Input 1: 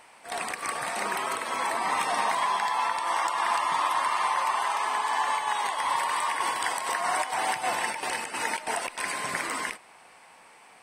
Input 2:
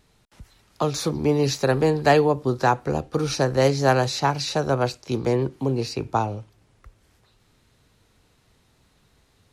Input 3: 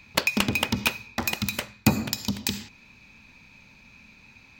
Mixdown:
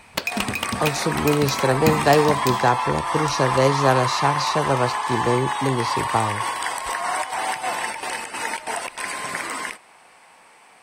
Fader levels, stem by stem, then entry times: +2.5 dB, +0.5 dB, -2.0 dB; 0.00 s, 0.00 s, 0.00 s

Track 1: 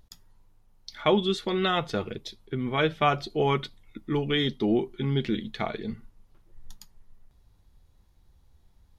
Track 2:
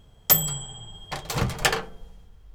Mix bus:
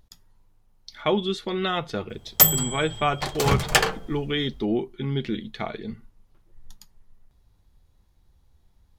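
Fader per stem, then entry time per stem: -0.5 dB, +3.0 dB; 0.00 s, 2.10 s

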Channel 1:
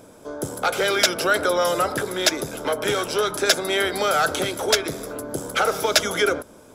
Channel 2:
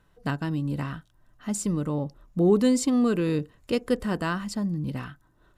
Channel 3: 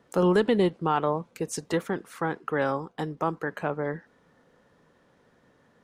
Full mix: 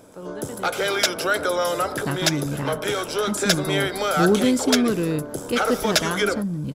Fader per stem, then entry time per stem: -2.0 dB, +1.5 dB, -15.5 dB; 0.00 s, 1.80 s, 0.00 s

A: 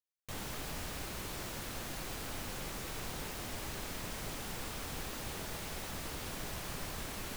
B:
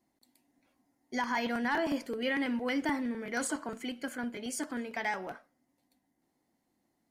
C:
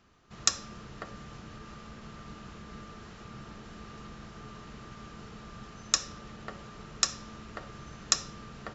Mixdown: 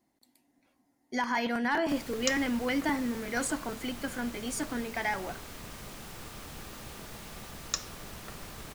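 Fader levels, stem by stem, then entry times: -3.5 dB, +2.0 dB, -6.5 dB; 1.60 s, 0.00 s, 1.80 s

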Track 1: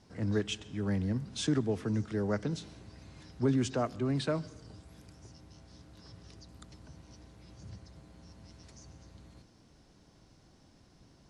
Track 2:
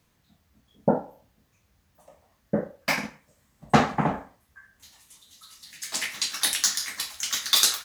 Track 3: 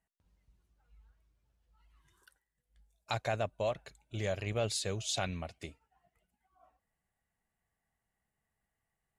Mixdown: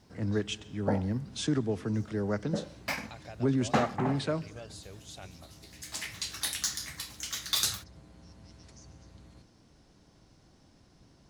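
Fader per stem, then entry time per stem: +0.5 dB, -8.5 dB, -13.0 dB; 0.00 s, 0.00 s, 0.00 s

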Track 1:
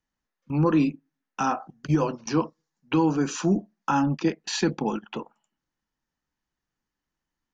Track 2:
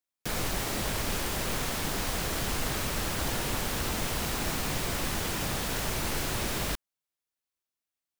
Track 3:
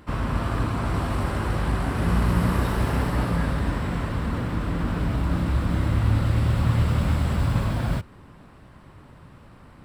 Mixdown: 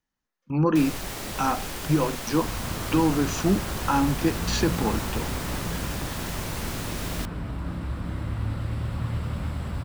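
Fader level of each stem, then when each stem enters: 0.0 dB, -2.5 dB, -8.0 dB; 0.00 s, 0.50 s, 2.35 s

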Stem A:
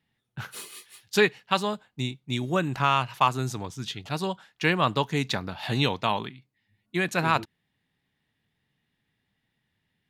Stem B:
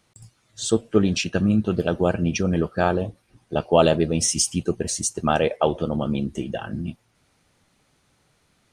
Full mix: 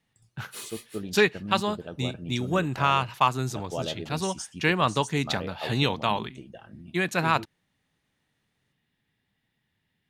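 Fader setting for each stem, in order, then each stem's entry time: 0.0 dB, -16.5 dB; 0.00 s, 0.00 s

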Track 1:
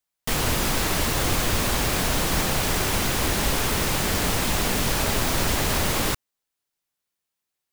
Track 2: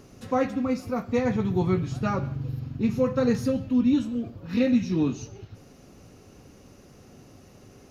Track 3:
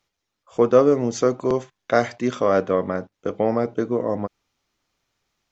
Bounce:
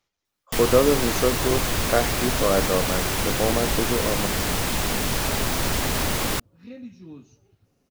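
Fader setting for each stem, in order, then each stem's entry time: -1.0 dB, -18.0 dB, -3.0 dB; 0.25 s, 2.10 s, 0.00 s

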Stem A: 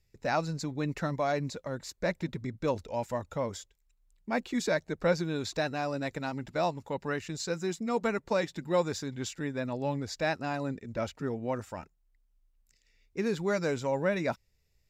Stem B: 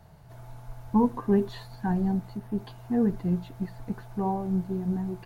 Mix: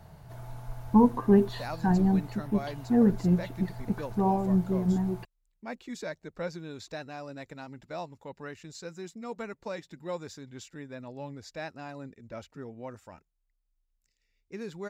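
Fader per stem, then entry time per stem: -8.5 dB, +2.5 dB; 1.35 s, 0.00 s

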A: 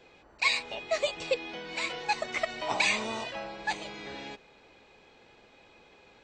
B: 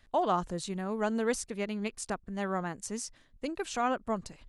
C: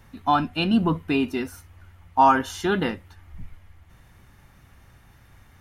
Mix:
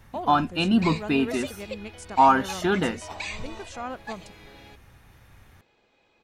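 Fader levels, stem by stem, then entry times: -8.0 dB, -5.0 dB, -0.5 dB; 0.40 s, 0.00 s, 0.00 s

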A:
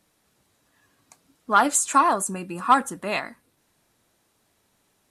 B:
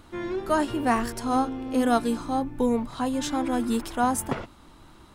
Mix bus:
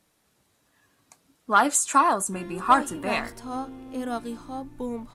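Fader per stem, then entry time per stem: -1.0 dB, -8.5 dB; 0.00 s, 2.20 s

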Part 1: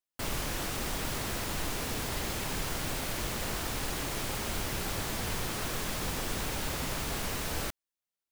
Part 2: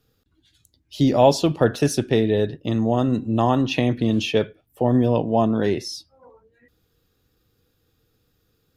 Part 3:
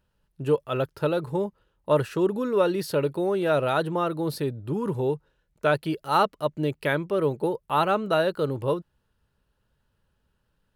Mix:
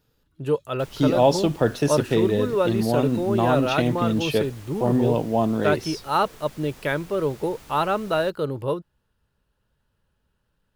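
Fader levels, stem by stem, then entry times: -13.0 dB, -2.5 dB, 0.0 dB; 0.60 s, 0.00 s, 0.00 s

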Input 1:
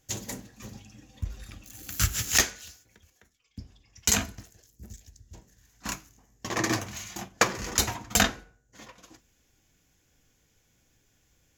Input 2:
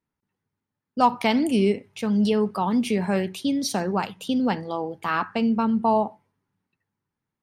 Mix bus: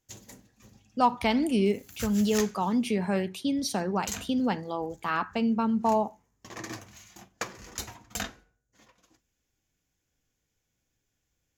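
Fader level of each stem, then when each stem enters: -12.0 dB, -4.0 dB; 0.00 s, 0.00 s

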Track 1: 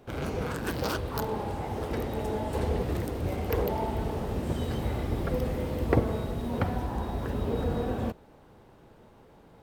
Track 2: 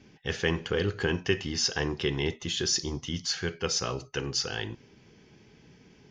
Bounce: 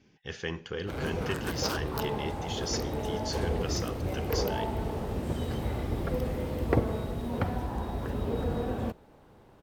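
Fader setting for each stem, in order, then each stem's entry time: -1.5 dB, -7.5 dB; 0.80 s, 0.00 s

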